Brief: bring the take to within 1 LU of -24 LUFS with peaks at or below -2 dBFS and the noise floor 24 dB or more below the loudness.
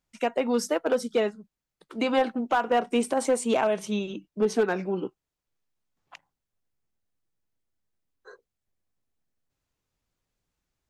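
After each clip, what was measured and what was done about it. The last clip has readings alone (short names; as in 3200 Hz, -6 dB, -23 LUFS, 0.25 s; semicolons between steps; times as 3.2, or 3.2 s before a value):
clipped 0.3%; flat tops at -16.0 dBFS; loudness -26.5 LUFS; peak -16.0 dBFS; loudness target -24.0 LUFS
-> clip repair -16 dBFS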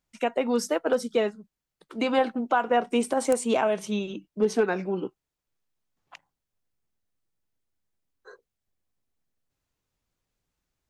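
clipped 0.0%; loudness -26.5 LUFS; peak -7.0 dBFS; loudness target -24.0 LUFS
-> gain +2.5 dB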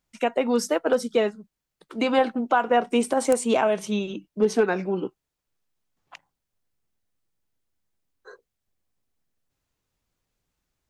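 loudness -24.0 LUFS; peak -4.5 dBFS; noise floor -84 dBFS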